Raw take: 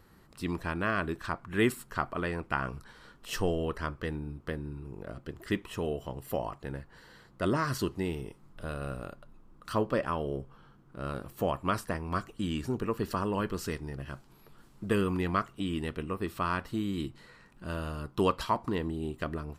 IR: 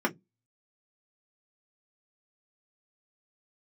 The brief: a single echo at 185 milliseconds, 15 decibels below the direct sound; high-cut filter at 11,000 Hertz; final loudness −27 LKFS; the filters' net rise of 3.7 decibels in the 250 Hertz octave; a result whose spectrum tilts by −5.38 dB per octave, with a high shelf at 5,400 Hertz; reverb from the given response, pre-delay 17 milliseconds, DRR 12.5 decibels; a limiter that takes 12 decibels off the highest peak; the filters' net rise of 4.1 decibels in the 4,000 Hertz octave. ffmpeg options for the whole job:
-filter_complex "[0:a]lowpass=11000,equalizer=frequency=250:width_type=o:gain=5,equalizer=frequency=4000:width_type=o:gain=7,highshelf=frequency=5400:gain=-3.5,alimiter=limit=-23dB:level=0:latency=1,aecho=1:1:185:0.178,asplit=2[link_01][link_02];[1:a]atrim=start_sample=2205,adelay=17[link_03];[link_02][link_03]afir=irnorm=-1:irlink=0,volume=-23dB[link_04];[link_01][link_04]amix=inputs=2:normalize=0,volume=7.5dB"

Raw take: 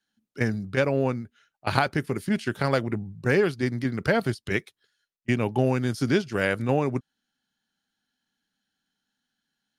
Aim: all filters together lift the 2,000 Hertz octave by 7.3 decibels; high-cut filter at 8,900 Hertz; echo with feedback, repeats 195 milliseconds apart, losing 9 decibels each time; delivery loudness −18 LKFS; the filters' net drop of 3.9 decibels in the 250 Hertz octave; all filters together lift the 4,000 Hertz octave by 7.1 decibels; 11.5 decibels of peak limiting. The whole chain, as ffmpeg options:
ffmpeg -i in.wav -af "lowpass=8900,equalizer=frequency=250:width_type=o:gain=-5,equalizer=frequency=2000:width_type=o:gain=8,equalizer=frequency=4000:width_type=o:gain=6.5,alimiter=limit=-10dB:level=0:latency=1,aecho=1:1:195|390|585|780:0.355|0.124|0.0435|0.0152,volume=8dB" out.wav

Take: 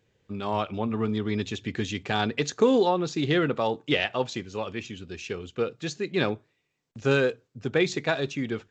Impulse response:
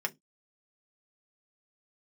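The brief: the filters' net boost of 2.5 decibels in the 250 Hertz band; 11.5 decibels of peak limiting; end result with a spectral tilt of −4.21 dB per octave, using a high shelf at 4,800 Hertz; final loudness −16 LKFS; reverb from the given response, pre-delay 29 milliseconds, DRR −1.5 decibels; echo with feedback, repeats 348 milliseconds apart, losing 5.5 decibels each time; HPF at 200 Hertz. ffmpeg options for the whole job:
-filter_complex "[0:a]highpass=200,equalizer=frequency=250:width_type=o:gain=5,highshelf=frequency=4800:gain=-7.5,alimiter=limit=-19.5dB:level=0:latency=1,aecho=1:1:348|696|1044|1392|1740|2088|2436:0.531|0.281|0.149|0.079|0.0419|0.0222|0.0118,asplit=2[link_01][link_02];[1:a]atrim=start_sample=2205,adelay=29[link_03];[link_02][link_03]afir=irnorm=-1:irlink=0,volume=-3.5dB[link_04];[link_01][link_04]amix=inputs=2:normalize=0,volume=11dB"

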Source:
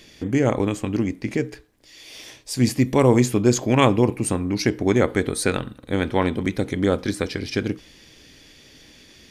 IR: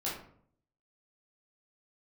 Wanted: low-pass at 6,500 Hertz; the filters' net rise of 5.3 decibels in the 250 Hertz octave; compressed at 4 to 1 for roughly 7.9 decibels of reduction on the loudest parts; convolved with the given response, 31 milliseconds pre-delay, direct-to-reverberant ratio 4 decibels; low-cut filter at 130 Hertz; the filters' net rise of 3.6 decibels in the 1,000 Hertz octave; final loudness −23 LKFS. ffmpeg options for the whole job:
-filter_complex "[0:a]highpass=130,lowpass=6500,equalizer=frequency=250:width_type=o:gain=6.5,equalizer=frequency=1000:width_type=o:gain=4,acompressor=threshold=-17dB:ratio=4,asplit=2[link_01][link_02];[1:a]atrim=start_sample=2205,adelay=31[link_03];[link_02][link_03]afir=irnorm=-1:irlink=0,volume=-8dB[link_04];[link_01][link_04]amix=inputs=2:normalize=0,volume=-1.5dB"

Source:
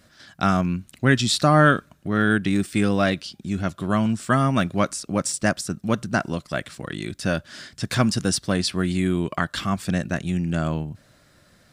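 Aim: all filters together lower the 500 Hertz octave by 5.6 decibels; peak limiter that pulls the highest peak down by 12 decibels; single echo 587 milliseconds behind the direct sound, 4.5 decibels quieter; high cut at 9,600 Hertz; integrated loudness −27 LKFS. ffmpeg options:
ffmpeg -i in.wav -af "lowpass=9600,equalizer=frequency=500:width_type=o:gain=-7.5,alimiter=limit=-18.5dB:level=0:latency=1,aecho=1:1:587:0.596,volume=1dB" out.wav

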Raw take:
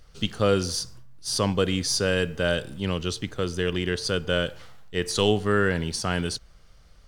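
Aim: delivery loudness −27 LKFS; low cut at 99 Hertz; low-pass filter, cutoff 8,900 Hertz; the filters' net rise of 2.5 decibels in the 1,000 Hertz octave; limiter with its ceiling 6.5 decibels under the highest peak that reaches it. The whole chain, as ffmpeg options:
ffmpeg -i in.wav -af "highpass=99,lowpass=8900,equalizer=frequency=1000:width_type=o:gain=3.5,volume=0.5dB,alimiter=limit=-13dB:level=0:latency=1" out.wav

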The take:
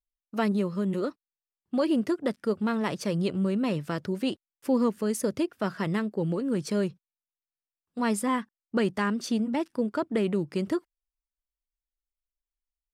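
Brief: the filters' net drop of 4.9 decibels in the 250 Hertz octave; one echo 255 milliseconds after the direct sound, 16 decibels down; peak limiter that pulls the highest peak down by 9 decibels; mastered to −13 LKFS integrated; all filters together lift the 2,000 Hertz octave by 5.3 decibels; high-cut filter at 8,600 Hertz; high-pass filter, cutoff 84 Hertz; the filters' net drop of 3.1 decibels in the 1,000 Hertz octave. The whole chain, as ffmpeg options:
ffmpeg -i in.wav -af "highpass=84,lowpass=8600,equalizer=frequency=250:width_type=o:gain=-6,equalizer=frequency=1000:width_type=o:gain=-6,equalizer=frequency=2000:width_type=o:gain=8.5,alimiter=limit=-22dB:level=0:latency=1,aecho=1:1:255:0.158,volume=20dB" out.wav

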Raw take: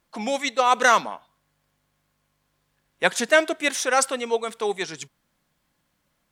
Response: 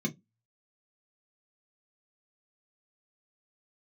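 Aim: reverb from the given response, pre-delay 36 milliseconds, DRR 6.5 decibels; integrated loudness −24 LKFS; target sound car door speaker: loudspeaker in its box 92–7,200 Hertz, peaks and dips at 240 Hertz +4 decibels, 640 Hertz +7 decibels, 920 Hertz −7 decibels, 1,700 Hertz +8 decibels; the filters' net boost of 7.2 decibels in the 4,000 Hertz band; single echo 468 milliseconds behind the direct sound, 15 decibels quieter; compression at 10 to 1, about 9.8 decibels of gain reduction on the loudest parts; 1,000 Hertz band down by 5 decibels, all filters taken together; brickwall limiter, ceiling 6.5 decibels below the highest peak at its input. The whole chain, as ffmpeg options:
-filter_complex "[0:a]equalizer=frequency=1000:width_type=o:gain=-8,equalizer=frequency=4000:width_type=o:gain=9,acompressor=threshold=-23dB:ratio=10,alimiter=limit=-17dB:level=0:latency=1,aecho=1:1:468:0.178,asplit=2[link_01][link_02];[1:a]atrim=start_sample=2205,adelay=36[link_03];[link_02][link_03]afir=irnorm=-1:irlink=0,volume=-10.5dB[link_04];[link_01][link_04]amix=inputs=2:normalize=0,highpass=92,equalizer=frequency=240:width_type=q:width=4:gain=4,equalizer=frequency=640:width_type=q:width=4:gain=7,equalizer=frequency=920:width_type=q:width=4:gain=-7,equalizer=frequency=1700:width_type=q:width=4:gain=8,lowpass=frequency=7200:width=0.5412,lowpass=frequency=7200:width=1.3066,volume=2dB"

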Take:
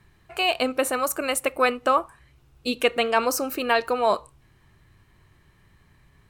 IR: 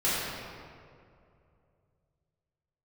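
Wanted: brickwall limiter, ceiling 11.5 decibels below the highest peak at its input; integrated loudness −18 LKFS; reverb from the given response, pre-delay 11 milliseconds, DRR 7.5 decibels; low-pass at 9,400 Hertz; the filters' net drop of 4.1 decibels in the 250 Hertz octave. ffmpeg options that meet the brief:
-filter_complex "[0:a]lowpass=9400,equalizer=frequency=250:width_type=o:gain=-4.5,alimiter=limit=-18.5dB:level=0:latency=1,asplit=2[link_01][link_02];[1:a]atrim=start_sample=2205,adelay=11[link_03];[link_02][link_03]afir=irnorm=-1:irlink=0,volume=-20dB[link_04];[link_01][link_04]amix=inputs=2:normalize=0,volume=11dB"

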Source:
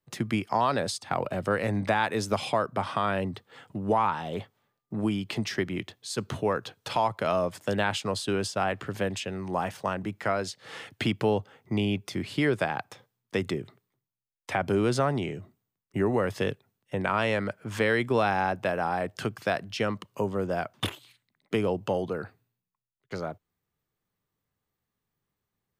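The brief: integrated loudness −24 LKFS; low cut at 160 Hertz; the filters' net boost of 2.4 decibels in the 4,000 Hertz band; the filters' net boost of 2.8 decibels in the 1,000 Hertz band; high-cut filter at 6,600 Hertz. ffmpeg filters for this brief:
ffmpeg -i in.wav -af "highpass=160,lowpass=6600,equalizer=frequency=1000:width_type=o:gain=3.5,equalizer=frequency=4000:width_type=o:gain=3.5,volume=4dB" out.wav

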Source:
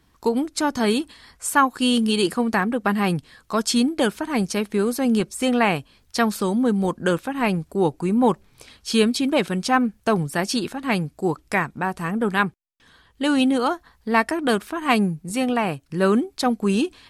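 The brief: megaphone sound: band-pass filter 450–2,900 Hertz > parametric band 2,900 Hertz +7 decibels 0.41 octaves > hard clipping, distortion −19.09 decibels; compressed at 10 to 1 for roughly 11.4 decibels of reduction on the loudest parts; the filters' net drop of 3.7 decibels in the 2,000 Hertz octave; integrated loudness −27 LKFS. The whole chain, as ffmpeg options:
ffmpeg -i in.wav -af "equalizer=frequency=2000:width_type=o:gain=-5.5,acompressor=threshold=-26dB:ratio=10,highpass=450,lowpass=2900,equalizer=frequency=2900:width_type=o:width=0.41:gain=7,asoftclip=type=hard:threshold=-23dB,volume=9.5dB" out.wav

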